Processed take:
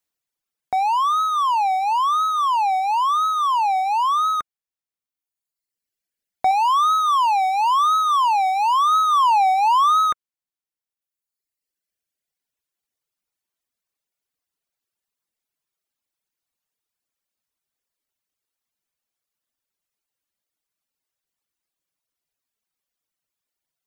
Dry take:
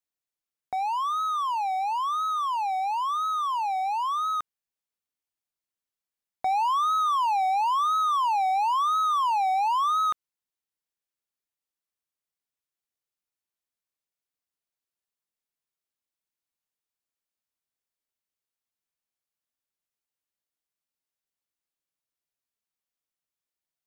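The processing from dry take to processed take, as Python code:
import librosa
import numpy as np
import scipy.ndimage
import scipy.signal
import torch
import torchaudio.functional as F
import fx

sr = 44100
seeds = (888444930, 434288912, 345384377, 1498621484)

y = fx.dereverb_blind(x, sr, rt60_s=1.7)
y = fx.low_shelf(y, sr, hz=450.0, db=-10.0, at=(6.51, 8.92))
y = y * librosa.db_to_amplitude(8.5)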